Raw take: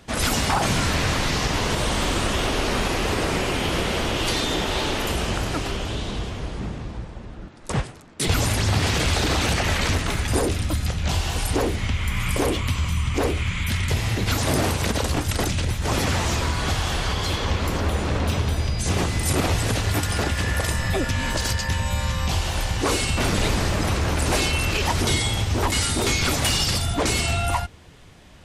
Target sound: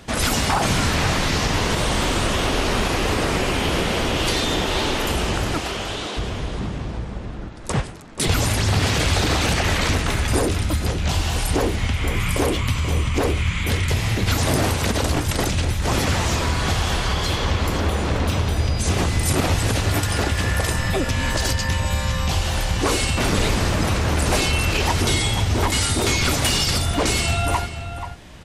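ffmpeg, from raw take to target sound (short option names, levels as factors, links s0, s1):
-filter_complex "[0:a]asettb=1/sr,asplit=3[s0][s1][s2];[s0]atrim=end=5.584[s3];[s1]atrim=start=5.58:end=6.17,asetpts=PTS-STARTPTS,afade=t=in:d=0.004:c=qsin,afade=t=out:st=0.586:d=0.004:c=qsin,highpass=410[s4];[s2]atrim=start=6.166[s5];[s3][s4]acrossfade=d=0.004:c1=hsin:c2=qsin[s6];[s6][s5]acrossfade=d=0.004:c1=qsin:c2=hsin,asplit=2[s7][s8];[s8]acompressor=threshold=0.0224:ratio=6,volume=0.944[s9];[s7][s9]amix=inputs=2:normalize=0,asplit=2[s10][s11];[s11]adelay=484,volume=0.355,highshelf=f=4000:g=-10.9[s12];[s10][s12]amix=inputs=2:normalize=0"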